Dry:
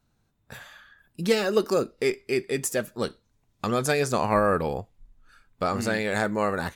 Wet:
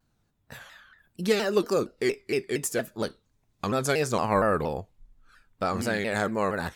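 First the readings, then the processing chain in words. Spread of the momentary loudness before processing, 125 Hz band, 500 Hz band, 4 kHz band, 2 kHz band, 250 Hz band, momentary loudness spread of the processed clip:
11 LU, -1.5 dB, -1.5 dB, -1.5 dB, -1.5 dB, -1.0 dB, 11 LU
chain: vibrato with a chosen wave saw down 4.3 Hz, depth 160 cents; trim -1.5 dB

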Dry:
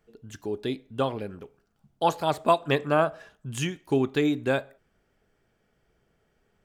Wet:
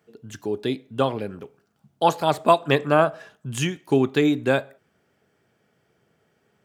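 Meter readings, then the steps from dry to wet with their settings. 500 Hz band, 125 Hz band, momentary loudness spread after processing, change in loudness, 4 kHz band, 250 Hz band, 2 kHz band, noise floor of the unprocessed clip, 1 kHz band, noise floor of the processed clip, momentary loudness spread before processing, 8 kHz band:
+4.5 dB, +4.5 dB, 14 LU, +4.5 dB, +4.5 dB, +4.5 dB, +4.5 dB, -71 dBFS, +4.5 dB, -68 dBFS, 14 LU, +4.5 dB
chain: high-pass 94 Hz 24 dB/octave; trim +4.5 dB

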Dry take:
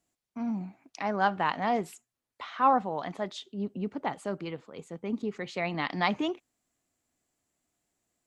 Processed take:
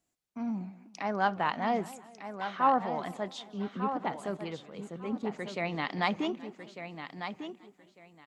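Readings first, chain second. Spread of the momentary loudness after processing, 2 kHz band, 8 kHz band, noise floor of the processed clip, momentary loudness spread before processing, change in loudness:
15 LU, -1.5 dB, -1.5 dB, -68 dBFS, 16 LU, -2.5 dB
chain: feedback delay 1199 ms, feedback 20%, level -9 dB; modulated delay 192 ms, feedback 47%, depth 216 cents, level -18.5 dB; trim -2 dB

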